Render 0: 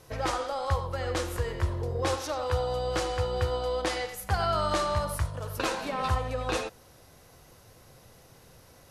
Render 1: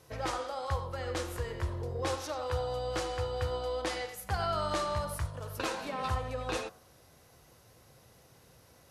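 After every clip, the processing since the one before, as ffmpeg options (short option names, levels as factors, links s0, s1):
-af "highpass=46,bandreject=f=92.32:t=h:w=4,bandreject=f=184.64:t=h:w=4,bandreject=f=276.96:t=h:w=4,bandreject=f=369.28:t=h:w=4,bandreject=f=461.6:t=h:w=4,bandreject=f=553.92:t=h:w=4,bandreject=f=646.24:t=h:w=4,bandreject=f=738.56:t=h:w=4,bandreject=f=830.88:t=h:w=4,bandreject=f=923.2:t=h:w=4,bandreject=f=1015.52:t=h:w=4,bandreject=f=1107.84:t=h:w=4,bandreject=f=1200.16:t=h:w=4,bandreject=f=1292.48:t=h:w=4,bandreject=f=1384.8:t=h:w=4,bandreject=f=1477.12:t=h:w=4,bandreject=f=1569.44:t=h:w=4,bandreject=f=1661.76:t=h:w=4,volume=0.596"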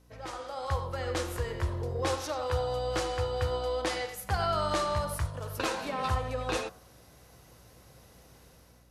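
-af "dynaudnorm=f=210:g=5:m=3.55,aeval=exprs='val(0)+0.00251*(sin(2*PI*60*n/s)+sin(2*PI*2*60*n/s)/2+sin(2*PI*3*60*n/s)/3+sin(2*PI*4*60*n/s)/4+sin(2*PI*5*60*n/s)/5)':c=same,volume=0.398"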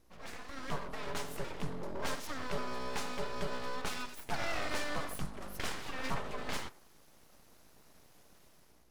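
-af "aeval=exprs='abs(val(0))':c=same,volume=0.631"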